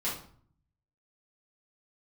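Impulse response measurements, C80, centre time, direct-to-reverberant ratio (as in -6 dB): 10.5 dB, 35 ms, -9.0 dB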